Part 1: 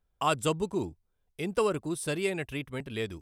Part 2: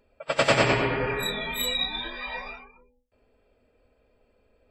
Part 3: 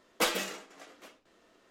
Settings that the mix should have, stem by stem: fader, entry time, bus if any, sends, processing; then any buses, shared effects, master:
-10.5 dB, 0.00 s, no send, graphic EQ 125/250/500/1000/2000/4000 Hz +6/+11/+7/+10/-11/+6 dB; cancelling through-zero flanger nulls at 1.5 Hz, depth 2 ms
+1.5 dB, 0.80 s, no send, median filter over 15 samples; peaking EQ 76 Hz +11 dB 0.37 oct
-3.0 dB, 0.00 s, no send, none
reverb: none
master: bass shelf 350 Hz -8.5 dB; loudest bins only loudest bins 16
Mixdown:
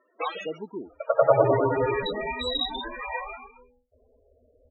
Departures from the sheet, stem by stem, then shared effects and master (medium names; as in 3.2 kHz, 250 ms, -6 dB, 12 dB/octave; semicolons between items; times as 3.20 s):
stem 2 +1.5 dB -> +8.5 dB; stem 3 -3.0 dB -> +3.0 dB